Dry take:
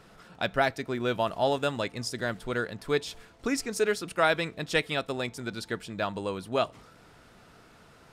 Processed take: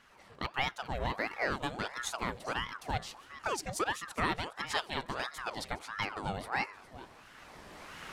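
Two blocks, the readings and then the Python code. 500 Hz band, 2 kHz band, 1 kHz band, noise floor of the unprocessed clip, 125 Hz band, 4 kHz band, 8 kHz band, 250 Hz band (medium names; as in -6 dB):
-12.0 dB, -4.0 dB, -3.0 dB, -56 dBFS, -5.0 dB, -4.0 dB, -3.5 dB, -9.0 dB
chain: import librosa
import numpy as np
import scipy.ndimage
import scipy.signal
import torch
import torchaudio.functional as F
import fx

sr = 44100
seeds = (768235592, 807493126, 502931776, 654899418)

y = fx.recorder_agc(x, sr, target_db=-16.0, rise_db_per_s=12.0, max_gain_db=30)
y = fx.echo_feedback(y, sr, ms=412, feedback_pct=26, wet_db=-16)
y = fx.ring_lfo(y, sr, carrier_hz=920.0, swing_pct=70, hz=1.5)
y = y * librosa.db_to_amplitude(-5.0)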